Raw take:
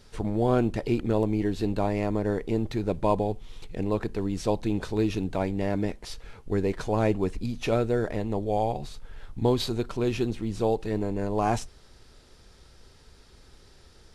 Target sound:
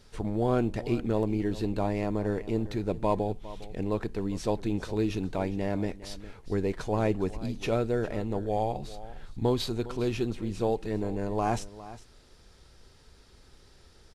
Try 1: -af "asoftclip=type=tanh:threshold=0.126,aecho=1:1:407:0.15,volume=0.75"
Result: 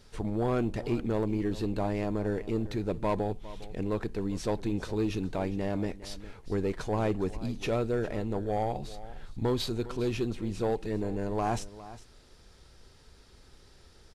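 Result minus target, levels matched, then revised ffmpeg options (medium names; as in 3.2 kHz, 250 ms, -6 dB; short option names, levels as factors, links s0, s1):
saturation: distortion +18 dB
-af "asoftclip=type=tanh:threshold=0.447,aecho=1:1:407:0.15,volume=0.75"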